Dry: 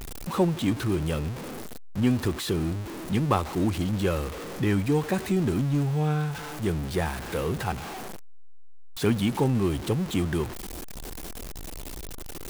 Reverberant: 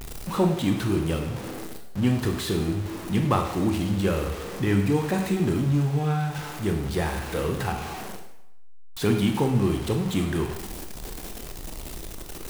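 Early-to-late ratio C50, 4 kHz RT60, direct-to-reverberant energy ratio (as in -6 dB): 6.5 dB, 0.75 s, 3.5 dB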